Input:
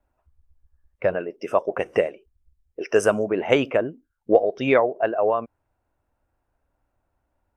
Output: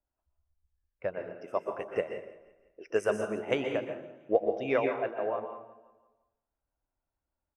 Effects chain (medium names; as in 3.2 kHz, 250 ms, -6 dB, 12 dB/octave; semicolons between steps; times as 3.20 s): on a send: feedback delay 170 ms, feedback 50%, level -16 dB; on the sum: plate-style reverb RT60 0.79 s, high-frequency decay 0.7×, pre-delay 110 ms, DRR 2.5 dB; upward expansion 1.5:1, over -28 dBFS; trim -8.5 dB